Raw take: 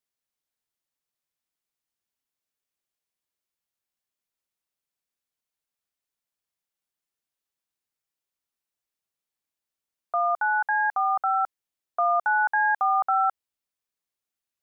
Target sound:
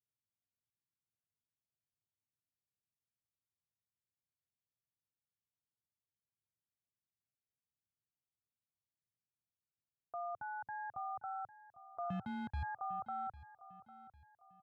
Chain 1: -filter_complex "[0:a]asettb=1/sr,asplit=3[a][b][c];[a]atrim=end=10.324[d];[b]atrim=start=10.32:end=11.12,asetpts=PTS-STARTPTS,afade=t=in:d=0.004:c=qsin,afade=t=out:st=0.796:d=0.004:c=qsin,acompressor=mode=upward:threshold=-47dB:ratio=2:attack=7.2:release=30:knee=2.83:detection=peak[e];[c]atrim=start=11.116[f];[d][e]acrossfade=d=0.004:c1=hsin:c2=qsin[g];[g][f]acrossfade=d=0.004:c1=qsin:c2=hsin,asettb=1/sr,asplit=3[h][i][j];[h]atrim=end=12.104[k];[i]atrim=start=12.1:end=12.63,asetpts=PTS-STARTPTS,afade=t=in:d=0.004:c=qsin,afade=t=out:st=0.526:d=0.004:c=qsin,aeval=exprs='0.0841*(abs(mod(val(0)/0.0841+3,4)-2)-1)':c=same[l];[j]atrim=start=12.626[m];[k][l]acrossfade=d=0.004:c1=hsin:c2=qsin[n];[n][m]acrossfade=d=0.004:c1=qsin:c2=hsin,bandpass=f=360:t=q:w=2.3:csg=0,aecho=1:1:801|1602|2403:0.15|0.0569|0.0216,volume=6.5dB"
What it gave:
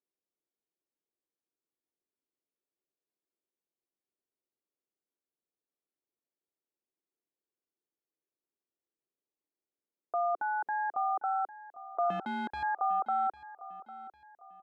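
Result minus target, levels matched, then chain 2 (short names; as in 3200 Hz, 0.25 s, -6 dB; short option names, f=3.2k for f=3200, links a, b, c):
125 Hz band -17.0 dB
-filter_complex "[0:a]asettb=1/sr,asplit=3[a][b][c];[a]atrim=end=10.324[d];[b]atrim=start=10.32:end=11.12,asetpts=PTS-STARTPTS,afade=t=in:d=0.004:c=qsin,afade=t=out:st=0.796:d=0.004:c=qsin,acompressor=mode=upward:threshold=-47dB:ratio=2:attack=7.2:release=30:knee=2.83:detection=peak[e];[c]atrim=start=11.116[f];[d][e]acrossfade=d=0.004:c1=hsin:c2=qsin[g];[g][f]acrossfade=d=0.004:c1=qsin:c2=hsin,asettb=1/sr,asplit=3[h][i][j];[h]atrim=end=12.104[k];[i]atrim=start=12.1:end=12.63,asetpts=PTS-STARTPTS,afade=t=in:d=0.004:c=qsin,afade=t=out:st=0.526:d=0.004:c=qsin,aeval=exprs='0.0841*(abs(mod(val(0)/0.0841+3,4)-2)-1)':c=same[l];[j]atrim=start=12.626[m];[k][l]acrossfade=d=0.004:c1=hsin:c2=qsin[n];[n][m]acrossfade=d=0.004:c1=qsin:c2=hsin,bandpass=f=110:t=q:w=2.3:csg=0,aecho=1:1:801|1602|2403:0.15|0.0569|0.0216,volume=6.5dB"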